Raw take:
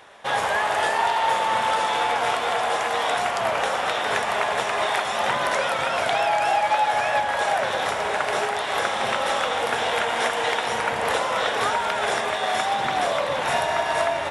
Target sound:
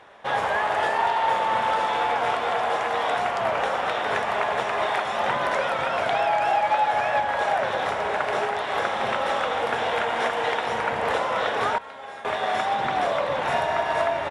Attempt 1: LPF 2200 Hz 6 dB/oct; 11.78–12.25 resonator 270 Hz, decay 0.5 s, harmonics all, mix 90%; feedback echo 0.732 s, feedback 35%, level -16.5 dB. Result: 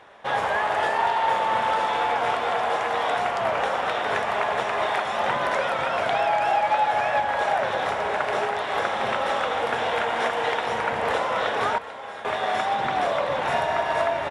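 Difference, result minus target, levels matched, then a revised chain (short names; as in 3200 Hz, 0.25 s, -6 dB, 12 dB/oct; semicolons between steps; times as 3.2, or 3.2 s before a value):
echo-to-direct +8.5 dB
LPF 2200 Hz 6 dB/oct; 11.78–12.25 resonator 270 Hz, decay 0.5 s, harmonics all, mix 90%; feedback echo 0.732 s, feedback 35%, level -25 dB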